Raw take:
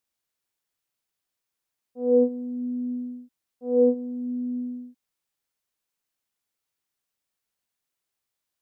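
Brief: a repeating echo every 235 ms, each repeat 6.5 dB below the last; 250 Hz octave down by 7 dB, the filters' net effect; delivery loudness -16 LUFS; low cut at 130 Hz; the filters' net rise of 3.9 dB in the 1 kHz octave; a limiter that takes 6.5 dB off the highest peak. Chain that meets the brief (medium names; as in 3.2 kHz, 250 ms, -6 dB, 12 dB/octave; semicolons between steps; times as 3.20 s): high-pass 130 Hz; peaking EQ 250 Hz -7 dB; peaking EQ 1 kHz +7.5 dB; peak limiter -18.5 dBFS; feedback delay 235 ms, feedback 47%, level -6.5 dB; trim +14.5 dB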